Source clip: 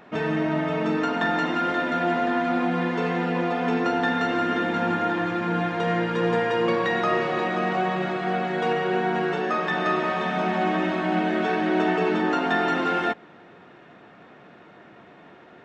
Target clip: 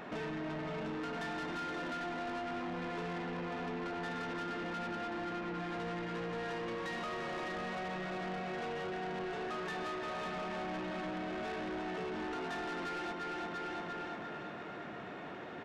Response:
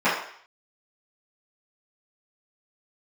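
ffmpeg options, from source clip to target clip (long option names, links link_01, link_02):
-filter_complex "[0:a]asettb=1/sr,asplit=3[link_01][link_02][link_03];[link_01]atrim=end=3.244[link_04];[link_02]atrim=start=3.24:end=5.55,asetpts=PTS-STARTPTS,afade=type=in:duration=0.004:curve=qsin,afade=type=out:start_time=2.306:duration=0.004:curve=qsin,highshelf=frequency=5500:gain=-11.5[link_05];[link_03]atrim=start=5.546[link_06];[link_04][link_05]acrossfade=duration=0.004:curve1=hsin:curve2=qsin[link_07];[link_07][link_06]acrossfade=duration=0.004:curve1=qsin:curve2=hsin,aecho=1:1:345|690|1035|1380|1725|2070:0.376|0.188|0.094|0.047|0.0235|0.0117,acompressor=threshold=-36dB:ratio=5,asoftclip=type=tanh:threshold=-40dB,volume=3.5dB"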